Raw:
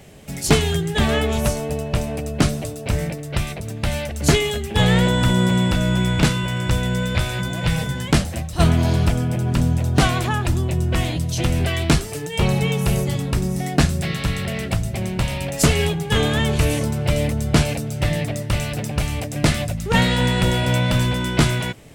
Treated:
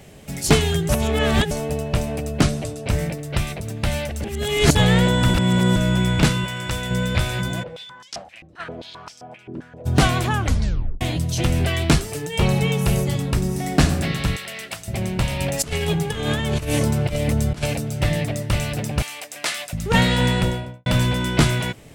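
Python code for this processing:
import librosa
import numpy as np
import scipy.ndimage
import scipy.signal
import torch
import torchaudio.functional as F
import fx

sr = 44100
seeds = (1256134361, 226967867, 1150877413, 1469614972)

y = fx.lowpass(x, sr, hz=10000.0, slope=12, at=(2.43, 2.9))
y = fx.low_shelf(y, sr, hz=470.0, db=-8.5, at=(6.45, 6.91))
y = fx.filter_held_bandpass(y, sr, hz=7.6, low_hz=340.0, high_hz=5400.0, at=(7.62, 9.85), fade=0.02)
y = fx.reverb_throw(y, sr, start_s=13.42, length_s=0.4, rt60_s=1.3, drr_db=5.5)
y = fx.highpass(y, sr, hz=1500.0, slope=6, at=(14.36, 14.88))
y = fx.over_compress(y, sr, threshold_db=-21.0, ratio=-0.5, at=(15.39, 17.66))
y = fx.bessel_highpass(y, sr, hz=1100.0, order=2, at=(19.02, 19.73))
y = fx.studio_fade_out(y, sr, start_s=20.28, length_s=0.58)
y = fx.edit(y, sr, fx.reverse_span(start_s=0.89, length_s=0.62),
    fx.reverse_span(start_s=4.24, length_s=0.51),
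    fx.reverse_span(start_s=5.34, length_s=0.42),
    fx.tape_stop(start_s=10.36, length_s=0.65), tone=tone)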